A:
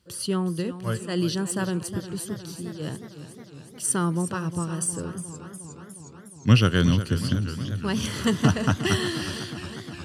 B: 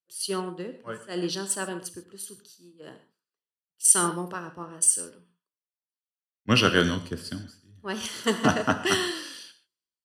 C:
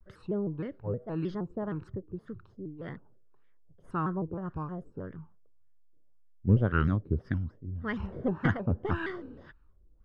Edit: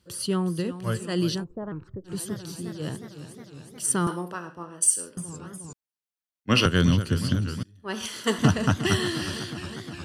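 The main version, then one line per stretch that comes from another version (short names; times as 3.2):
A
1.4–2.09 from C, crossfade 0.10 s
4.07–5.17 from B
5.73–6.66 from B
7.63–8.39 from B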